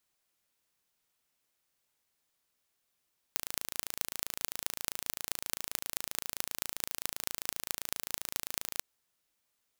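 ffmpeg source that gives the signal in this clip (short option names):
-f lavfi -i "aevalsrc='0.708*eq(mod(n,1598),0)*(0.5+0.5*eq(mod(n,9588),0))':d=5.45:s=44100"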